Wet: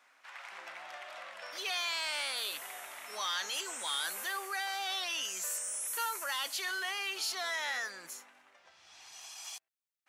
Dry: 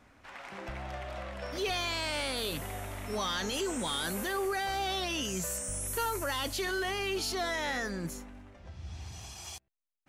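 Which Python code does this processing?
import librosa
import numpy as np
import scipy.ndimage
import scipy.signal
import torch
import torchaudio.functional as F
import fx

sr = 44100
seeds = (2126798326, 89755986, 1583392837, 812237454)

y = scipy.signal.sosfilt(scipy.signal.butter(2, 1000.0, 'highpass', fs=sr, output='sos'), x)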